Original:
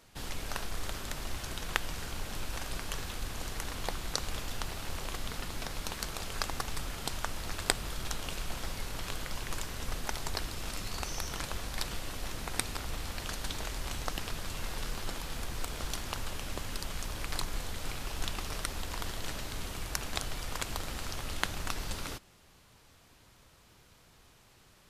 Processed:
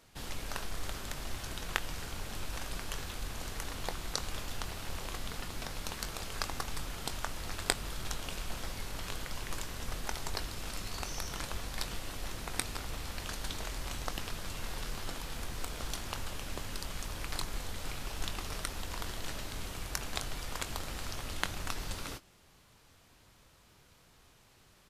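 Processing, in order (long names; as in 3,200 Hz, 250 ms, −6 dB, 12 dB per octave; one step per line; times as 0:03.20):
double-tracking delay 22 ms −12 dB
level −2 dB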